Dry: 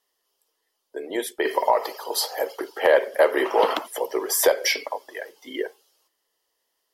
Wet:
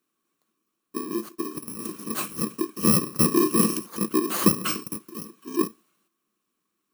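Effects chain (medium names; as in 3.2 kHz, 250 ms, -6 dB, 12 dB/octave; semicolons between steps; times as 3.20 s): bit-reversed sample order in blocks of 64 samples; 1.08–1.79 s: compression 8:1, threshold -30 dBFS, peak gain reduction 16 dB; small resonant body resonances 210/320/1100 Hz, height 17 dB, ringing for 35 ms; trim -6 dB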